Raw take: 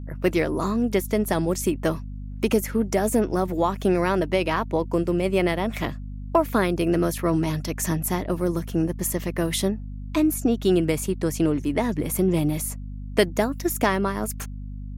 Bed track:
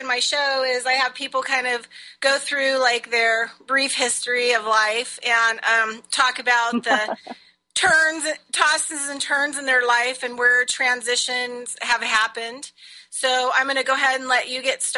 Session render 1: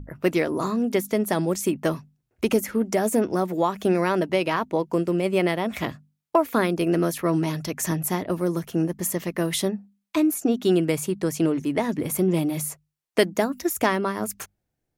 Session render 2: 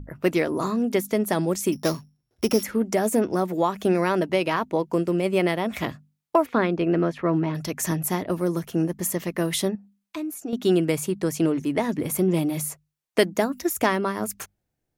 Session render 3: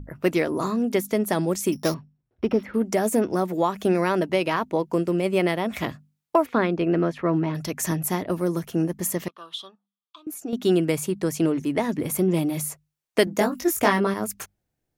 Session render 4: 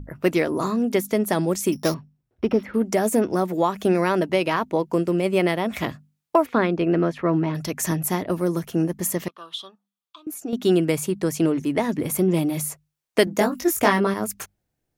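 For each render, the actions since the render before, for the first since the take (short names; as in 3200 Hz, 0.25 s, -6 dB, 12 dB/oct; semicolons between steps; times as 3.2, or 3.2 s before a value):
notches 50/100/150/200/250 Hz
1.72–2.63 sample sorter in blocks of 8 samples; 6.45–7.54 LPF 3500 Hz -> 2100 Hz; 9.75–10.53 compressor 1.5:1, threshold -46 dBFS
1.94–2.74 air absorption 390 m; 9.28–10.27 double band-pass 2000 Hz, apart 1.5 oct; 13.25–14.14 doubler 20 ms -2 dB
gain +1.5 dB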